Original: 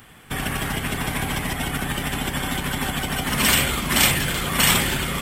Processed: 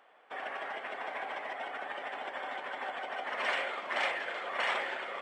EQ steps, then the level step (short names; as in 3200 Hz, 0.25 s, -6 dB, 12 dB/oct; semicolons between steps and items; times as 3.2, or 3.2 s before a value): dynamic EQ 1900 Hz, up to +6 dB, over -35 dBFS, Q 2.1; ladder high-pass 500 Hz, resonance 45%; tape spacing loss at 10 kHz 34 dB; 0.0 dB